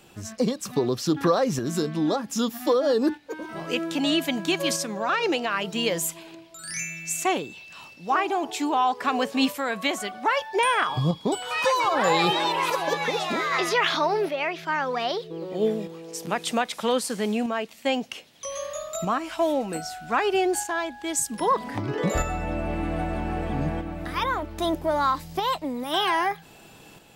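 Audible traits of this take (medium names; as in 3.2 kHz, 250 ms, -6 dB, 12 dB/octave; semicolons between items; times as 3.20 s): tremolo saw up 0.63 Hz, depth 45%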